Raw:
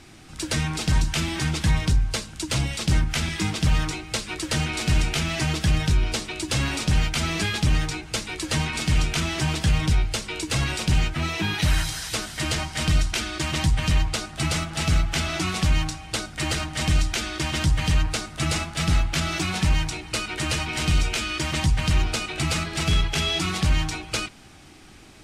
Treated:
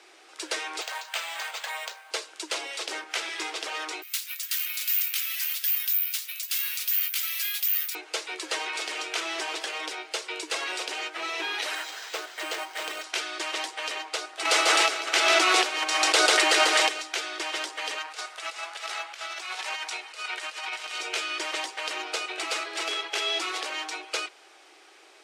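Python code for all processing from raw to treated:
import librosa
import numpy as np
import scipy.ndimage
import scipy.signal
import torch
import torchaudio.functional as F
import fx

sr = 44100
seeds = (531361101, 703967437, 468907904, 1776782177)

y = fx.chain(x, sr, fx.steep_highpass(hz=550.0, slope=36),
    fx.resample_bad(factor=4, down='filtered', up='hold'), at=(0.81, 2.11))
y = fx.chain(y, sr, fx.resample_bad(factor=3, down='none', up='zero_stuff'),
    fx.bessel_highpass(hz=2500.0, order=4), at=(4.02, 7.95))
y = fx.chain(y, sr, fx.air_absorb(metres=94.0),
    fx.resample_bad(factor=4, down='none', up='hold'), at=(11.75, 13.04))
y = fx.chain(y, sr, fx.echo_single(ms=143, db=-7.5),
    fx.env_flatten(amount_pct=100), at=(14.45, 16.89))
y = fx.chain(y, sr, fx.highpass(hz=670.0, slope=12),
    fx.over_compress(threshold_db=-32.0, ratio=-0.5), at=(17.98, 21.0))
y = scipy.signal.sosfilt(scipy.signal.butter(8, 370.0, 'highpass', fs=sr, output='sos'), y)
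y = fx.high_shelf(y, sr, hz=8600.0, db=-9.5)
y = F.gain(torch.from_numpy(y), -1.5).numpy()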